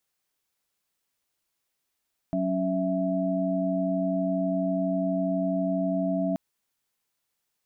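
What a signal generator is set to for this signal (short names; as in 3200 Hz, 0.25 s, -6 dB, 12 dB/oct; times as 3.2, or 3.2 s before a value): chord F#3/C#4/E5 sine, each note -28 dBFS 4.03 s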